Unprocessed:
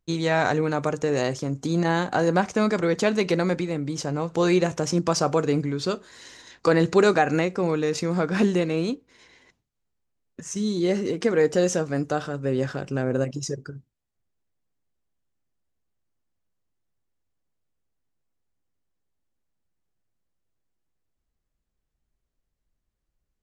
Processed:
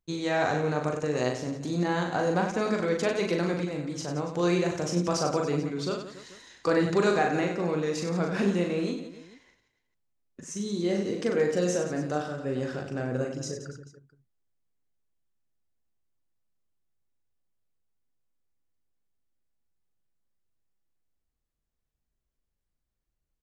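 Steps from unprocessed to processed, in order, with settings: reverse bouncing-ball echo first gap 40 ms, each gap 1.4×, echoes 5; trim -6.5 dB

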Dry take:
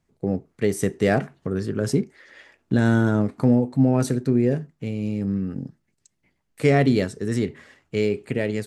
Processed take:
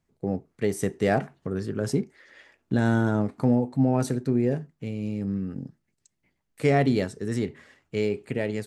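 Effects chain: dynamic bell 820 Hz, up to +5 dB, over -39 dBFS, Q 2.3; trim -4 dB

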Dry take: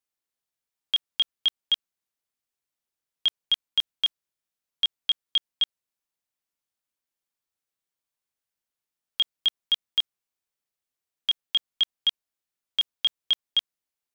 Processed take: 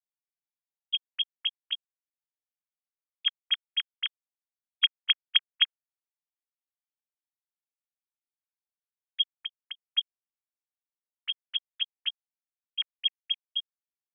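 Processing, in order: formants replaced by sine waves; 9.33–9.89 s: low-pass that closes with the level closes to 800 Hz, closed at -23.5 dBFS; trim -3.5 dB

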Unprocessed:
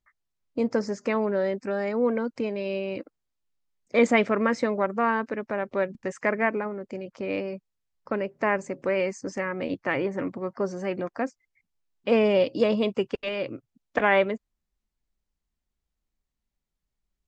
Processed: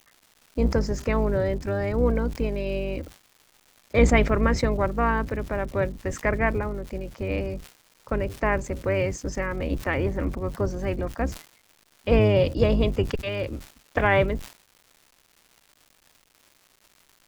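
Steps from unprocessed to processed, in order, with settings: octave divider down 2 oct, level +4 dB; crackle 400 per s -43 dBFS; decay stretcher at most 150 dB/s

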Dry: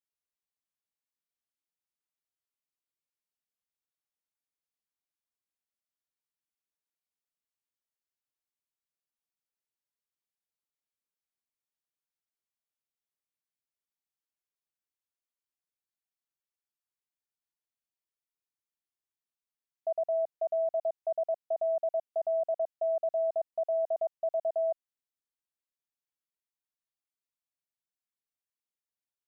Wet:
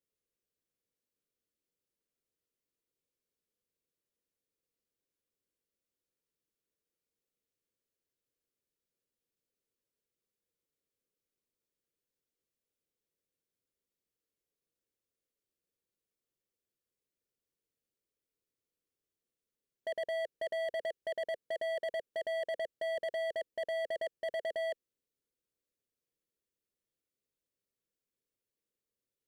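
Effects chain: resonant low shelf 620 Hz +8 dB, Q 3; overload inside the chain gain 33.5 dB

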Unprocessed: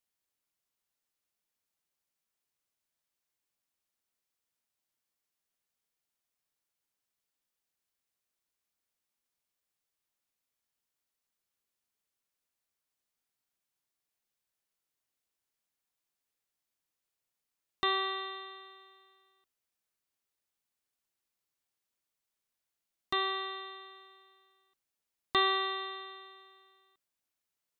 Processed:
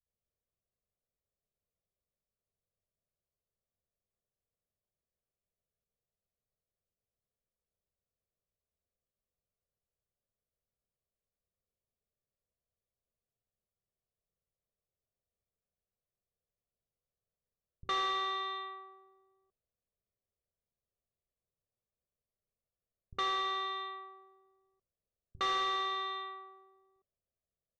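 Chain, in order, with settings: level-controlled noise filter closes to 390 Hz, open at -38.5 dBFS; comb 1.7 ms, depth 78%; in parallel at +0.5 dB: compression, threshold -36 dBFS, peak gain reduction 15 dB; on the sum: saturation -27.5 dBFS, distortion -8 dB; distance through air 180 m; bands offset in time lows, highs 60 ms, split 160 Hz

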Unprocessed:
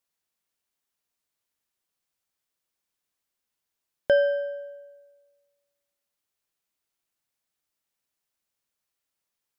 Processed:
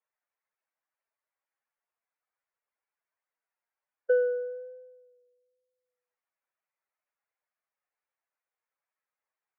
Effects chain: spectral contrast enhancement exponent 1.7; vibrato 1.1 Hz 21 cents; mistuned SSB -71 Hz 590–2300 Hz

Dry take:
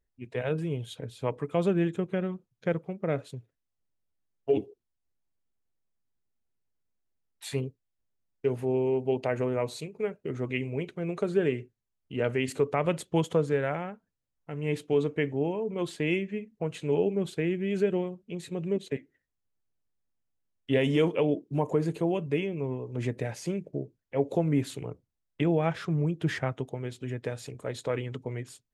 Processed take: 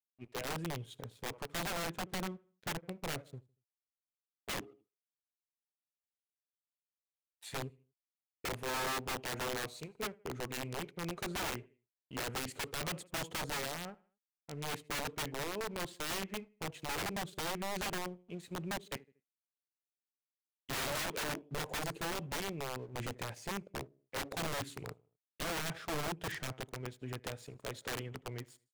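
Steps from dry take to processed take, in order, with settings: crossover distortion -53 dBFS; on a send: feedback delay 78 ms, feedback 38%, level -22.5 dB; on the sum: integer overflow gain 25 dB; trim -7 dB

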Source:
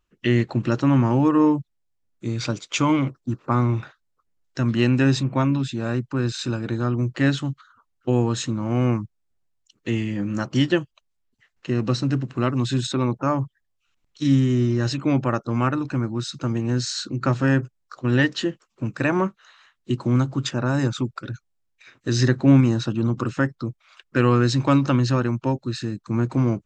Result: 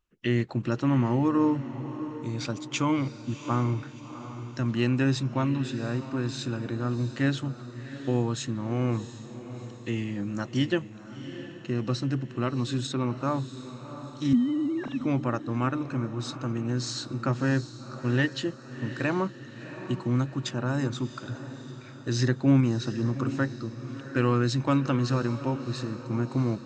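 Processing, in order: 14.33–15.01 s: formants replaced by sine waves; echo that smears into a reverb 705 ms, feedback 47%, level -12 dB; trim -6 dB

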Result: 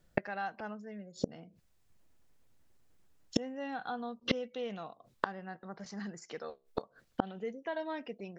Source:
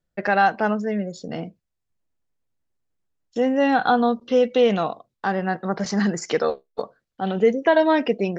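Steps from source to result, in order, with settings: dynamic bell 390 Hz, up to -3 dB, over -31 dBFS, Q 0.79; inverted gate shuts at -26 dBFS, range -30 dB; trim +11 dB

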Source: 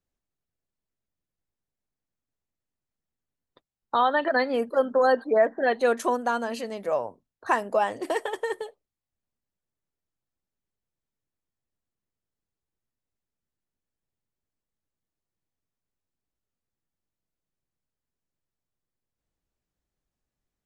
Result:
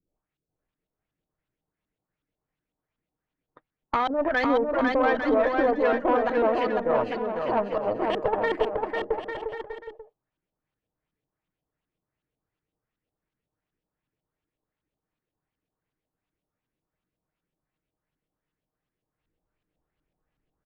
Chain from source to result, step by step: comb 6.5 ms, depth 31%; in parallel at +1.5 dB: compressor with a negative ratio -27 dBFS, ratio -0.5; on the sum: LFO low-pass saw up 2.7 Hz 260–3400 Hz; valve stage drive 10 dB, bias 0.55; bouncing-ball echo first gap 500 ms, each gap 0.7×, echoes 5; trim -4.5 dB

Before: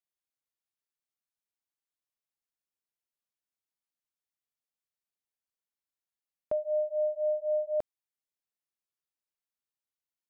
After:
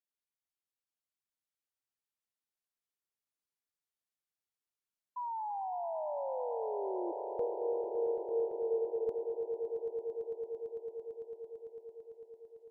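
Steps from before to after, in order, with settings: gliding tape speed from 98% -> 64%; painted sound fall, 5.16–7.12 s, 340–1000 Hz -32 dBFS; echo with a slow build-up 112 ms, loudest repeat 8, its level -12.5 dB; trim -6 dB

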